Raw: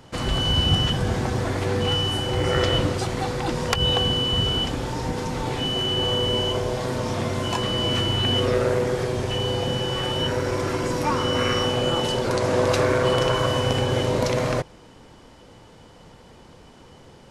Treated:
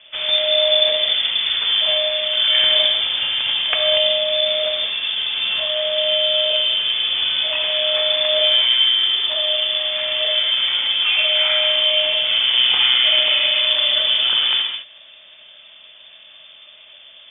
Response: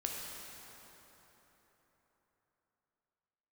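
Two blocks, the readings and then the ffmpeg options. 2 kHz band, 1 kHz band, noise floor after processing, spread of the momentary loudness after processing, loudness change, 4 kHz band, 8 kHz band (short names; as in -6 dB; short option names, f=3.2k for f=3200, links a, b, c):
+8.0 dB, -7.0 dB, -45 dBFS, 6 LU, +7.5 dB, +12.0 dB, under -40 dB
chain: -filter_complex "[1:a]atrim=start_sample=2205,afade=t=out:st=0.27:d=0.01,atrim=end_sample=12348[a];[0:a][a]afir=irnorm=-1:irlink=0,lowpass=f=3.1k:t=q:w=0.5098,lowpass=f=3.1k:t=q:w=0.6013,lowpass=f=3.1k:t=q:w=0.9,lowpass=f=3.1k:t=q:w=2.563,afreqshift=-3600,volume=3dB"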